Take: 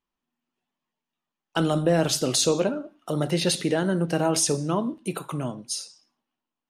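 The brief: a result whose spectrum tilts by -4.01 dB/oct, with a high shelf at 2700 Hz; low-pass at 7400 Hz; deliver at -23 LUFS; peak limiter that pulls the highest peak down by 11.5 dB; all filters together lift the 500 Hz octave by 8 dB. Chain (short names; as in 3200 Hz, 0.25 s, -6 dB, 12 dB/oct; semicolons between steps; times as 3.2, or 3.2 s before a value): LPF 7400 Hz; bell 500 Hz +9 dB; high shelf 2700 Hz +8.5 dB; gain +2 dB; limiter -13 dBFS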